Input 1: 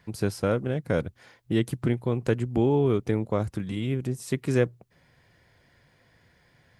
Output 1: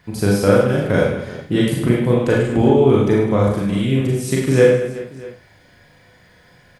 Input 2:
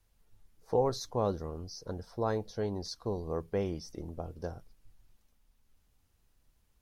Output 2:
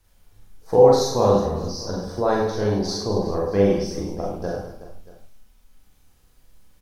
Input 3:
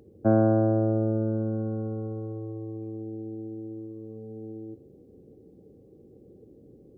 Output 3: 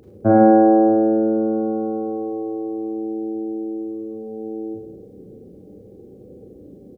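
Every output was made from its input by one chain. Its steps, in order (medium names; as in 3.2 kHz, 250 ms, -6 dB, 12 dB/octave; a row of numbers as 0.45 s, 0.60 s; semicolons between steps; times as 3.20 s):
reverse bouncing-ball echo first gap 40 ms, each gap 1.6×, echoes 5; Schroeder reverb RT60 0.3 s, combs from 30 ms, DRR -1 dB; peak normalisation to -1.5 dBFS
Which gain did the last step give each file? +6.0 dB, +8.0 dB, +5.0 dB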